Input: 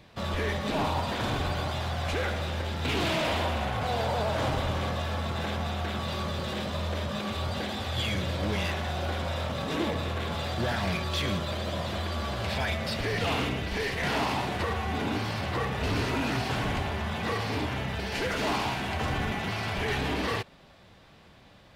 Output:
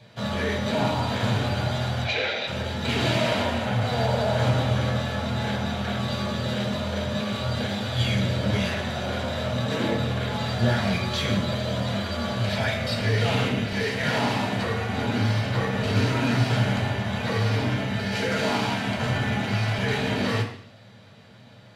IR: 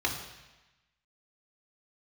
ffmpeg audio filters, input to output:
-filter_complex "[0:a]asplit=3[s0][s1][s2];[s0]afade=t=out:st=2.04:d=0.02[s3];[s1]highpass=400,equalizer=f=1200:t=q:w=4:g=-8,equalizer=f=2400:t=q:w=4:g=10,equalizer=f=3800:t=q:w=4:g=7,lowpass=f=5800:w=0.5412,lowpass=f=5800:w=1.3066,afade=t=in:st=2.04:d=0.02,afade=t=out:st=2.46:d=0.02[s4];[s2]afade=t=in:st=2.46:d=0.02[s5];[s3][s4][s5]amix=inputs=3:normalize=0[s6];[1:a]atrim=start_sample=2205,asetrate=79380,aresample=44100[s7];[s6][s7]afir=irnorm=-1:irlink=0"

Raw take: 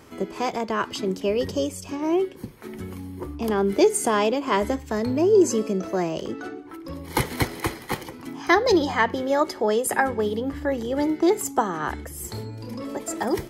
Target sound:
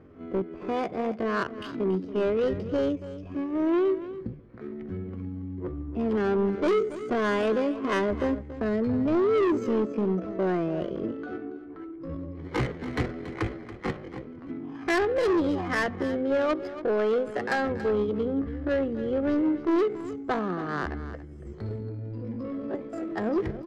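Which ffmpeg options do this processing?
-filter_complex "[0:a]lowpass=7500,equalizer=f=900:w=4.3:g=-12,volume=10.6,asoftclip=hard,volume=0.0944,atempo=0.57,adynamicsmooth=sensitivity=1.5:basefreq=1100,asplit=2[s0][s1];[s1]aecho=0:1:281:0.2[s2];[s0][s2]amix=inputs=2:normalize=0"

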